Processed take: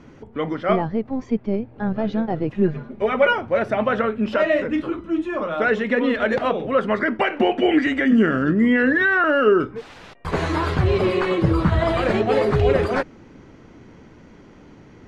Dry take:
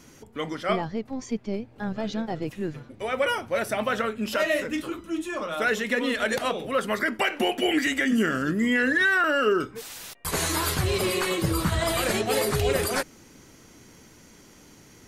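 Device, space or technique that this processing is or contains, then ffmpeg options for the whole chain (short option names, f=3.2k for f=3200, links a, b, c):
phone in a pocket: -filter_complex "[0:a]asettb=1/sr,asplit=3[a][b][c];[a]atrim=end=2.544[d];[b]atrim=start=2.54:end=3.33,asetpts=PTS-STARTPTS,afade=t=in:d=0.004:c=qsin,afade=t=out:st=0.786:d=0.004:c=qsin,aecho=1:1:4.9:0.98,atrim=end_sample=34839[e];[c]atrim=start=3.326[f];[d][e]acrossfade=d=0.004:c1=hsin:c2=qsin[g];[g][f]acrossfade=d=0.004:c1=qsin:c2=hsin,lowpass=3.4k,highshelf=f=2k:g=-11,volume=7.5dB"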